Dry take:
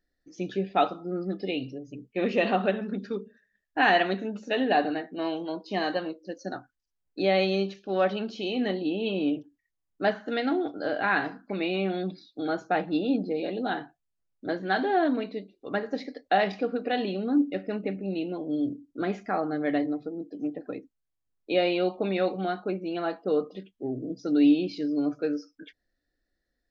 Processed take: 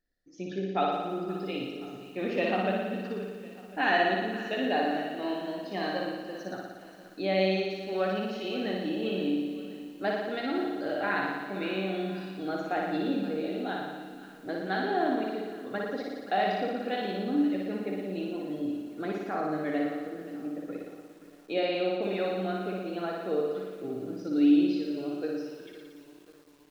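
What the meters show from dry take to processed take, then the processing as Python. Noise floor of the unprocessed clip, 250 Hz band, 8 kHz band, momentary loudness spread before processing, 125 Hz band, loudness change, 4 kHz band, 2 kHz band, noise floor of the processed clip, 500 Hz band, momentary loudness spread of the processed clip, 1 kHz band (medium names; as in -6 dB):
-81 dBFS, -2.0 dB, no reading, 12 LU, -2.0 dB, -2.5 dB, -2.5 dB, -2.5 dB, -52 dBFS, -2.5 dB, 11 LU, -2.5 dB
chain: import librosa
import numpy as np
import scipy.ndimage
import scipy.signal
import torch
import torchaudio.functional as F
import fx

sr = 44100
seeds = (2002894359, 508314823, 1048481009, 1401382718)

y = fx.room_flutter(x, sr, wall_m=10.0, rt60_s=1.3)
y = fx.echo_crushed(y, sr, ms=524, feedback_pct=55, bits=7, wet_db=-15.0)
y = y * 10.0 ** (-6.0 / 20.0)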